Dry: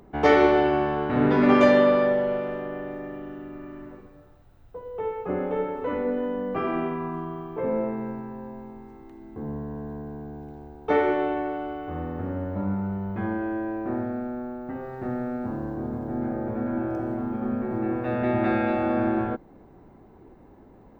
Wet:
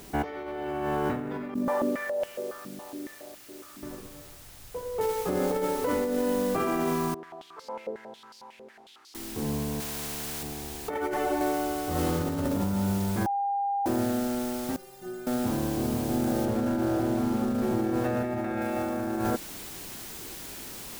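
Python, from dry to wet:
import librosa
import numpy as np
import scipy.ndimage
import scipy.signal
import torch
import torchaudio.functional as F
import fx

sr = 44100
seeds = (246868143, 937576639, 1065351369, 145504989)

y = fx.filter_held_bandpass(x, sr, hz=7.2, low_hz=210.0, high_hz=2800.0, at=(1.54, 3.83))
y = fx.noise_floor_step(y, sr, seeds[0], at_s=5.01, before_db=-53, after_db=-44, tilt_db=0.0)
y = fx.filter_held_bandpass(y, sr, hz=11.0, low_hz=490.0, high_hz=4700.0, at=(7.14, 9.15))
y = fx.spectral_comp(y, sr, ratio=2.0, at=(9.8, 10.43))
y = fx.ensemble(y, sr, at=(10.94, 11.41))
y = fx.reverb_throw(y, sr, start_s=11.91, length_s=0.41, rt60_s=1.6, drr_db=-5.5)
y = fx.stiff_resonator(y, sr, f0_hz=180.0, decay_s=0.33, stiffness=0.008, at=(14.76, 15.27))
y = fx.high_shelf(y, sr, hz=4200.0, db=-8.5, at=(16.45, 18.62))
y = fx.edit(y, sr, fx.bleep(start_s=13.26, length_s=0.6, hz=802.0, db=-22.5), tone=tone)
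y = fx.over_compress(y, sr, threshold_db=-28.0, ratio=-1.0)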